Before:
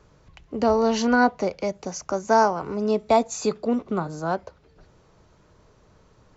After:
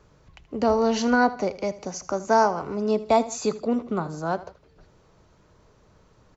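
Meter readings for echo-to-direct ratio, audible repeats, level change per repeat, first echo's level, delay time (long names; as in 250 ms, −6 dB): −16.0 dB, 2, −6.5 dB, −17.0 dB, 79 ms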